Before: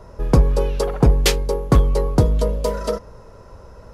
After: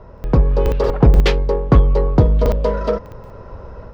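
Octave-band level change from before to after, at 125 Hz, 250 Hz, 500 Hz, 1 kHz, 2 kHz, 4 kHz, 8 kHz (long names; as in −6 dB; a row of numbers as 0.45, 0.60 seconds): +3.0 dB, +2.5 dB, +3.0 dB, +2.5 dB, +1.5 dB, −3.5 dB, below −10 dB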